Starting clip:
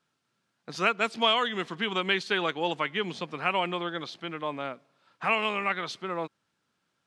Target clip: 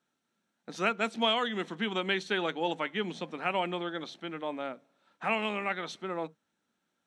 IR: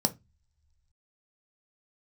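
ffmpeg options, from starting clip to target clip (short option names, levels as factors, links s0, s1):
-filter_complex "[0:a]asplit=2[s0][s1];[1:a]atrim=start_sample=2205,afade=t=out:st=0.13:d=0.01,atrim=end_sample=6174[s2];[s1][s2]afir=irnorm=-1:irlink=0,volume=0.15[s3];[s0][s3]amix=inputs=2:normalize=0,volume=0.562"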